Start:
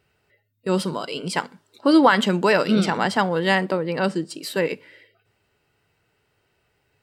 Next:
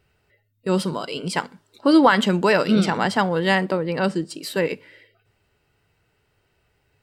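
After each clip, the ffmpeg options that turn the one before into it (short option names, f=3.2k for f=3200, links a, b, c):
-af "lowshelf=f=71:g=11.5"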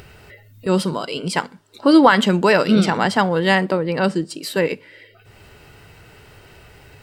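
-af "acompressor=mode=upward:threshold=-32dB:ratio=2.5,volume=3dB"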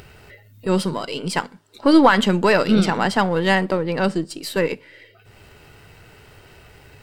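-af "aeval=exprs='if(lt(val(0),0),0.708*val(0),val(0))':c=same"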